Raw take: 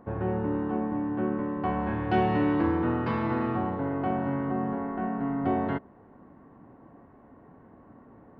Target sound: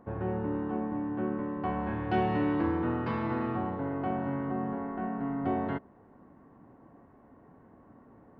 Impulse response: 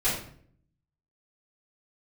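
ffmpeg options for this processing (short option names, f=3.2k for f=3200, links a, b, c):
-af "volume=-3.5dB"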